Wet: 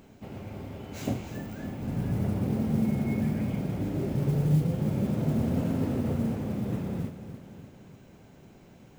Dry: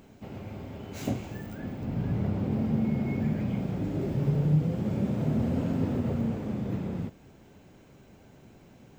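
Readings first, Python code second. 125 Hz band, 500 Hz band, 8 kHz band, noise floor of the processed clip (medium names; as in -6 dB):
+0.5 dB, +0.5 dB, no reading, -54 dBFS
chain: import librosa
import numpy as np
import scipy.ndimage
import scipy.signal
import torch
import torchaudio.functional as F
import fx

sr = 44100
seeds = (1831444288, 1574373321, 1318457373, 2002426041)

y = fx.echo_feedback(x, sr, ms=298, feedback_pct=55, wet_db=-11.5)
y = fx.mod_noise(y, sr, seeds[0], snr_db=29)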